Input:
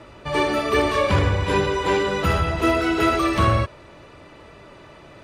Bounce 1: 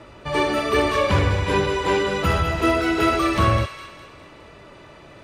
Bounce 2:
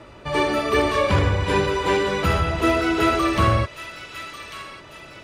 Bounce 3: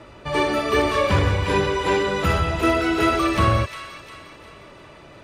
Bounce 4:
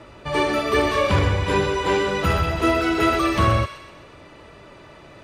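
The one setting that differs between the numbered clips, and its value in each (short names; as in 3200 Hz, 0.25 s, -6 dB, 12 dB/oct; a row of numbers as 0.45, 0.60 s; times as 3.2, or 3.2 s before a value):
thin delay, time: 0.205, 1.145, 0.354, 0.127 s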